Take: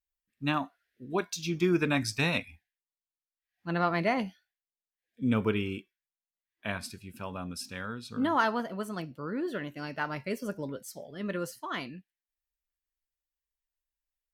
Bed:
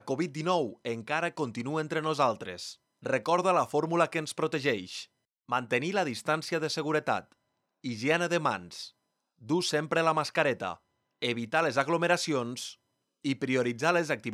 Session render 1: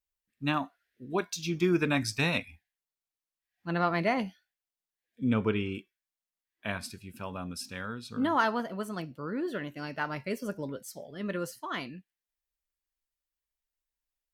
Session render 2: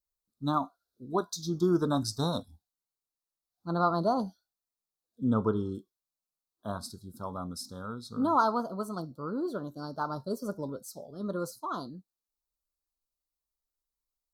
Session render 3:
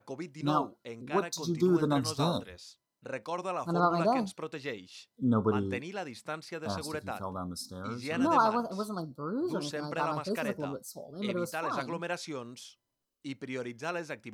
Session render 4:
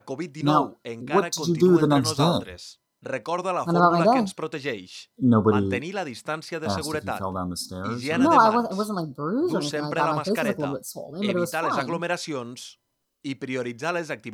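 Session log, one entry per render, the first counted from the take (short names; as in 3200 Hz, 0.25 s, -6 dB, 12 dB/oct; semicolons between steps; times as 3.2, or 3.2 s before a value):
5.24–5.75 air absorption 65 m
elliptic band-stop 1300–3900 Hz, stop band 50 dB; dynamic EQ 1100 Hz, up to +4 dB, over -42 dBFS, Q 0.83
add bed -9.5 dB
gain +8.5 dB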